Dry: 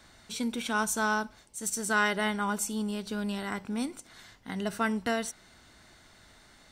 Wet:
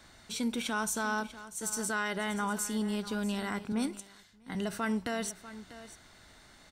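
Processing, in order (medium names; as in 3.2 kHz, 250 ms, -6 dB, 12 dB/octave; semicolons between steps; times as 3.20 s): peak limiter -23 dBFS, peak gain reduction 8.5 dB; delay 643 ms -15 dB; 3.72–4.55 s: three bands expanded up and down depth 100%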